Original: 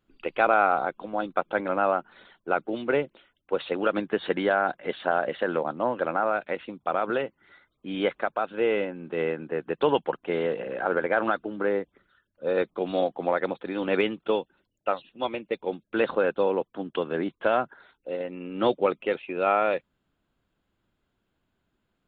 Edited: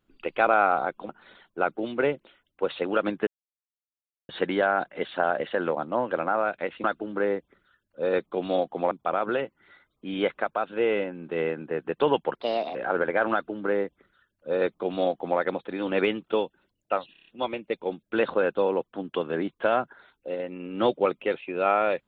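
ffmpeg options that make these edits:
ffmpeg -i in.wav -filter_complex "[0:a]asplit=12[link_01][link_02][link_03][link_04][link_05][link_06][link_07][link_08][link_09][link_10][link_11][link_12];[link_01]atrim=end=1.092[link_13];[link_02]atrim=start=1.988:end=4.17,asetpts=PTS-STARTPTS,afade=type=out:start_time=2.178:duration=0.004:curve=hsin,apad=pad_dur=1.02[link_14];[link_03]atrim=start=4.17:end=6.722,asetpts=PTS-STARTPTS,afade=type=in:duration=0.004:curve=hsin[link_15];[link_04]atrim=start=11.278:end=13.352[link_16];[link_05]atrim=start=6.718:end=10.164[link_17];[link_06]atrim=start=10.16:end=10.71,asetpts=PTS-STARTPTS,asetrate=60417,aresample=44100,atrim=end_sample=17704,asetpts=PTS-STARTPTS[link_18];[link_07]atrim=start=10.706:end=15.112[link_19];[link_08]atrim=start=15.078:end=15.112[link_20];[link_09]atrim=start=15.078:end=15.112[link_21];[link_10]atrim=start=15.078:end=15.112[link_22];[link_11]atrim=start=15.078:end=15.112[link_23];[link_12]atrim=start=15.078[link_24];[link_14][link_15]concat=n=2:v=0:a=1[link_25];[link_13][link_25]acrossfade=duration=0.004:curve1=hsin:curve2=hsin[link_26];[link_26][link_16]acrossfade=duration=0.004:curve1=hsin:curve2=hsin[link_27];[link_27][link_17]acrossfade=duration=0.004:curve1=hsin:curve2=hsin[link_28];[link_28][link_18]acrossfade=duration=0.004:curve1=hsin:curve2=hsin[link_29];[link_29][link_19]acrossfade=duration=0.004:curve1=hsin:curve2=hsin[link_30];[link_30][link_20]acrossfade=duration=0.004:curve1=hsin:curve2=hsin[link_31];[link_31][link_21]acrossfade=duration=0.004:curve1=hsin:curve2=hsin[link_32];[link_32][link_22]acrossfade=duration=0.004:curve1=hsin:curve2=hsin[link_33];[link_33][link_23]acrossfade=duration=0.004:curve1=hsin:curve2=hsin[link_34];[link_34][link_24]acrossfade=duration=0.004:curve1=hsin:curve2=hsin" out.wav

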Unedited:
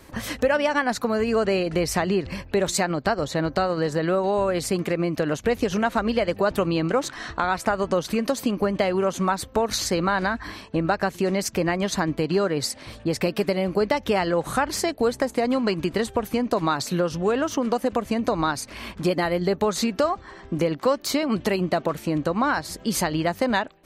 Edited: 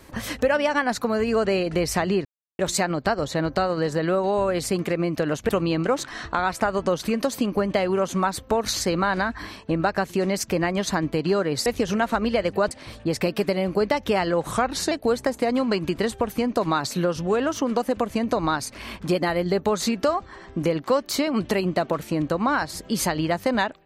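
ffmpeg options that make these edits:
ffmpeg -i in.wav -filter_complex "[0:a]asplit=8[link_01][link_02][link_03][link_04][link_05][link_06][link_07][link_08];[link_01]atrim=end=2.25,asetpts=PTS-STARTPTS,afade=type=out:start_time=2.246:duration=0.004:curve=hsin[link_09];[link_02]atrim=start=2.25:end=2.59,asetpts=PTS-STARTPTS,volume=0[link_10];[link_03]atrim=start=2.59:end=5.492,asetpts=PTS-STARTPTS,afade=type=in:duration=0.004:curve=hsin[link_11];[link_04]atrim=start=6.538:end=12.712[link_12];[link_05]atrim=start=5.488:end=6.542[link_13];[link_06]atrim=start=12.708:end=14.514[link_14];[link_07]atrim=start=14.51:end=14.87,asetpts=PTS-STARTPTS,asetrate=39249,aresample=44100,atrim=end_sample=17838,asetpts=PTS-STARTPTS[link_15];[link_08]atrim=start=14.866[link_16];[link_09][link_10][link_11]concat=n=3:v=0:a=1[link_17];[link_17][link_12]acrossfade=duration=0.004:curve1=hsin:curve2=hsin[link_18];[link_18][link_13]acrossfade=duration=0.004:curve1=hsin:curve2=hsin[link_19];[link_19][link_14]acrossfade=duration=0.004:curve1=hsin:curve2=hsin[link_20];[link_20][link_15]acrossfade=duration=0.004:curve1=hsin:curve2=hsin[link_21];[link_21][link_16]acrossfade=duration=0.004:curve1=hsin:curve2=hsin" out.wav

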